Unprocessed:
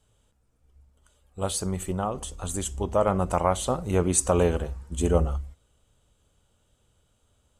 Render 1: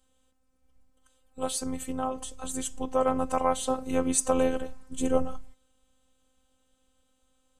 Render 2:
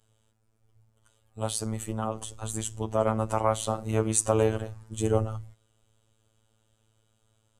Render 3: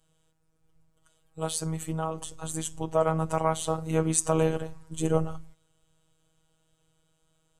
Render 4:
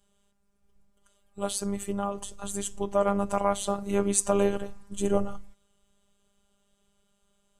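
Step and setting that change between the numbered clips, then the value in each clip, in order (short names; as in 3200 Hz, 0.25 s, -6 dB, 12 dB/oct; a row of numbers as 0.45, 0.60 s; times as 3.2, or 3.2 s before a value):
robotiser, frequency: 260, 110, 160, 200 Hz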